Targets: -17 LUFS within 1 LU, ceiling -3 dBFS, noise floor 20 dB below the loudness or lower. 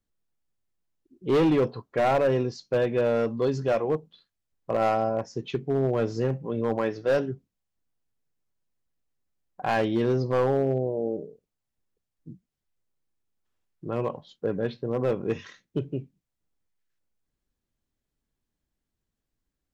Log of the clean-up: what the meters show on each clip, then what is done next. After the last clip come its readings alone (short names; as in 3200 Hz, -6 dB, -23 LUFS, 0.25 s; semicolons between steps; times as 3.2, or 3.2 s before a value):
clipped 1.1%; flat tops at -17.5 dBFS; loudness -27.0 LUFS; peak -17.5 dBFS; loudness target -17.0 LUFS
-> clip repair -17.5 dBFS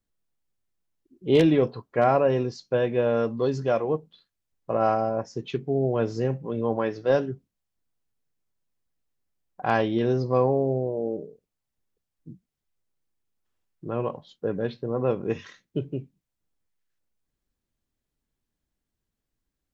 clipped 0.0%; loudness -25.5 LUFS; peak -8.5 dBFS; loudness target -17.0 LUFS
-> gain +8.5 dB; limiter -3 dBFS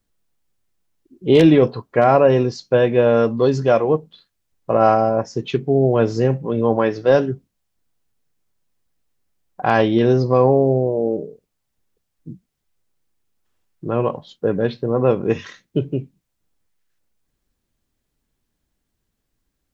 loudness -17.5 LUFS; peak -3.0 dBFS; noise floor -76 dBFS